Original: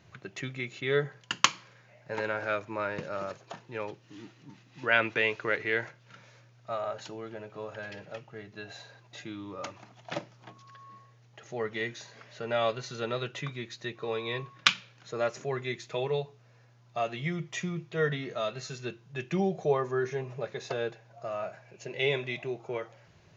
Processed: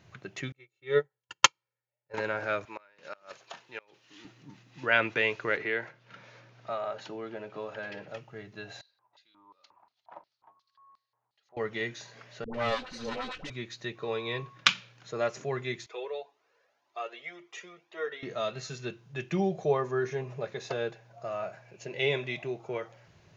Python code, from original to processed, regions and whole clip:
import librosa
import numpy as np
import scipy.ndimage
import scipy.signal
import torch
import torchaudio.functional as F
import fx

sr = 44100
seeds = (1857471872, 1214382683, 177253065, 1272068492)

y = fx.chain(x, sr, fx.peak_eq(hz=680.0, db=5.0, octaves=0.6),
    fx.comb(ms=2.2, depth=0.99),
    fx.upward_expand(threshold_db=-41.0, expansion=2.5), at=(0.52, 2.14))
y = fx.chain(y, sr, fx.highpass(hz=830.0, slope=6),
    fx.peak_eq(hz=3300.0, db=4.0, octaves=1.5),
    fx.gate_flip(shuts_db=-26.0, range_db=-26), at=(2.65, 4.25))
y = fx.chain(y, sr, fx.bandpass_edges(low_hz=150.0, high_hz=4900.0),
    fx.band_squash(depth_pct=40), at=(5.57, 8.08))
y = fx.chain(y, sr, fx.high_shelf(hz=2200.0, db=-10.0),
    fx.filter_lfo_bandpass(shape='square', hz=2.8, low_hz=960.0, high_hz=4300.0, q=5.5), at=(8.81, 11.57))
y = fx.chain(y, sr, fx.lower_of_two(delay_ms=3.9),
    fx.lowpass(hz=6300.0, slope=24),
    fx.dispersion(late='highs', ms=100.0, hz=610.0), at=(12.44, 13.5))
y = fx.chain(y, sr, fx.highpass(hz=360.0, slope=24),
    fx.high_shelf(hz=5600.0, db=-8.5),
    fx.comb_cascade(direction='rising', hz=1.9), at=(15.86, 18.23))